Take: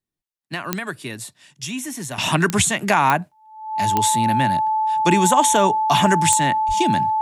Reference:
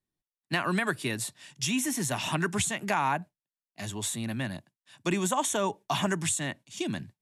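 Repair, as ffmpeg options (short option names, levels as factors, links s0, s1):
-filter_complex "[0:a]adeclick=t=4,bandreject=f=870:w=30,asplit=3[s0][s1][s2];[s0]afade=t=out:st=6.67:d=0.02[s3];[s1]highpass=f=140:w=0.5412,highpass=f=140:w=1.3066,afade=t=in:st=6.67:d=0.02,afade=t=out:st=6.79:d=0.02[s4];[s2]afade=t=in:st=6.79:d=0.02[s5];[s3][s4][s5]amix=inputs=3:normalize=0,asetnsamples=n=441:p=0,asendcmd='2.18 volume volume -10.5dB',volume=1"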